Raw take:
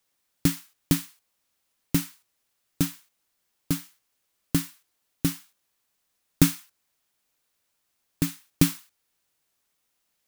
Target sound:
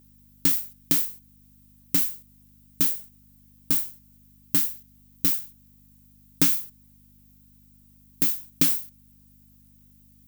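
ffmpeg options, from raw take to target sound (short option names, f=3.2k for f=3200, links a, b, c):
-filter_complex "[0:a]acrossover=split=6800[a][b];[b]acompressor=threshold=-33dB:ratio=4:attack=1:release=60[c];[a][c]amix=inputs=2:normalize=0,aeval=exprs='val(0)+0.00708*(sin(2*PI*50*n/s)+sin(2*PI*2*50*n/s)/2+sin(2*PI*3*50*n/s)/3+sin(2*PI*4*50*n/s)/4+sin(2*PI*5*50*n/s)/5)':c=same,aemphasis=mode=production:type=bsi,volume=-2.5dB"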